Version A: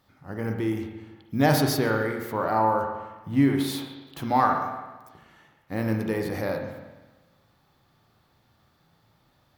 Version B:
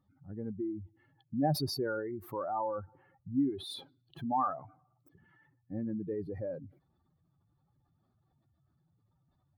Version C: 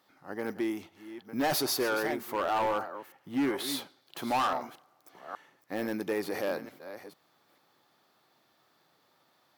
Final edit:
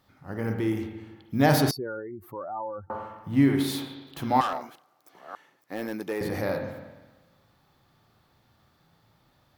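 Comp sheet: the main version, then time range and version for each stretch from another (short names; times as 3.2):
A
1.71–2.9 from B
4.41–6.21 from C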